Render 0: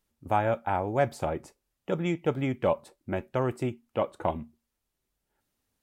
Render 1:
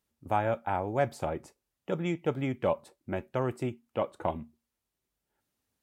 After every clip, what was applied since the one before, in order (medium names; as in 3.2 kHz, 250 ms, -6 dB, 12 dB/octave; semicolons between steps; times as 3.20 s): high-pass 52 Hz; trim -2.5 dB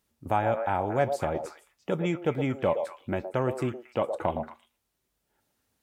in parallel at 0 dB: compression, threshold -36 dBFS, peak gain reduction 14 dB; on the sum: repeats whose band climbs or falls 115 ms, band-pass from 600 Hz, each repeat 1.4 oct, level -4.5 dB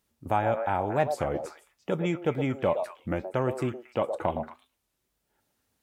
warped record 33 1/3 rpm, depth 160 cents